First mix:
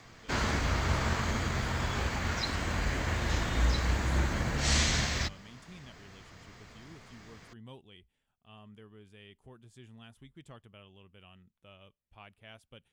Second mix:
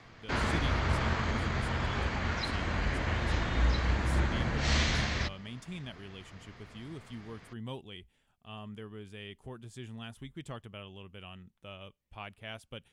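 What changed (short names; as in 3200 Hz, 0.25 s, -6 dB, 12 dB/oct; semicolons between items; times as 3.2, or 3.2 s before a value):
speech +8.5 dB; background: add LPF 4200 Hz 12 dB/oct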